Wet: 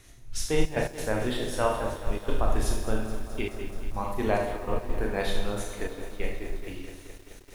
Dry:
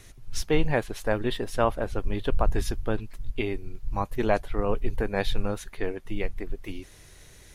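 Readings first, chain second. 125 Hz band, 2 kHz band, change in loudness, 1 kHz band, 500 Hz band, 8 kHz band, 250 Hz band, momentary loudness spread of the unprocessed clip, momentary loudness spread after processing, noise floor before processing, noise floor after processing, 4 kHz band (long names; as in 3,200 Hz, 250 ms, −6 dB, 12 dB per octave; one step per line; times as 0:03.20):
−2.5 dB, −1.0 dB, −1.5 dB, −1.0 dB, −1.5 dB, +4.0 dB, −2.0 dB, 12 LU, 12 LU, −51 dBFS, −49 dBFS, 0.0 dB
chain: four-comb reverb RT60 0.72 s, combs from 25 ms, DRR 0 dB
gate pattern "xxxxxx.x.xxx" 138 BPM −12 dB
dynamic equaliser 9,000 Hz, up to +7 dB, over −54 dBFS, Q 1
feedback echo at a low word length 214 ms, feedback 80%, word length 7 bits, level −13 dB
level −4.5 dB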